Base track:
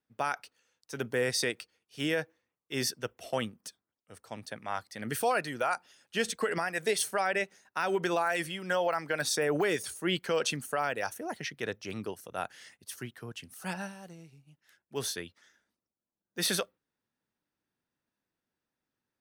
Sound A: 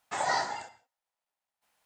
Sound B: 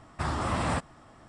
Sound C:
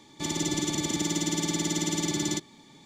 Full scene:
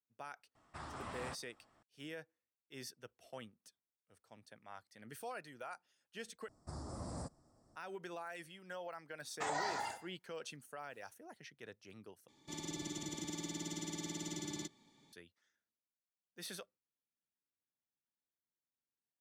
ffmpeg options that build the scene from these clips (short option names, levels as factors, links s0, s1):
-filter_complex "[2:a]asplit=2[s0][s1];[0:a]volume=0.133[s2];[s0]lowshelf=f=290:g=-7[s3];[s1]firequalizer=gain_entry='entry(580,0);entry(860,-6);entry(2900,-25);entry(4700,3)':delay=0.05:min_phase=1[s4];[1:a]acompressor=threshold=0.0251:ratio=6:attack=3.2:release=140:knee=1:detection=peak[s5];[s2]asplit=3[s6][s7][s8];[s6]atrim=end=6.484[s9];[s4]atrim=end=1.28,asetpts=PTS-STARTPTS,volume=0.188[s10];[s7]atrim=start=7.756:end=12.284[s11];[3:a]atrim=end=2.85,asetpts=PTS-STARTPTS,volume=0.178[s12];[s8]atrim=start=15.126[s13];[s3]atrim=end=1.28,asetpts=PTS-STARTPTS,volume=0.168,afade=t=in:d=0.004:c=hsin,afade=t=out:st=1.276:d=0.004:c=hsin,adelay=550[s14];[s5]atrim=end=1.85,asetpts=PTS-STARTPTS,volume=0.75,afade=t=in:d=0.004:c=hsin,afade=t=out:st=1.846:d=0.004:c=hsin,adelay=9290[s15];[s9][s10]acrossfade=d=0.004:c1=hsin:c2=hsin[s16];[s16][s11]acrossfade=d=0.004:c1=hsin:c2=hsin[s17];[s17][s12]acrossfade=d=0.004:c1=hsin:c2=hsin[s18];[s18][s13]acrossfade=d=0.004:c1=hsin:c2=hsin[s19];[s19][s14][s15]amix=inputs=3:normalize=0"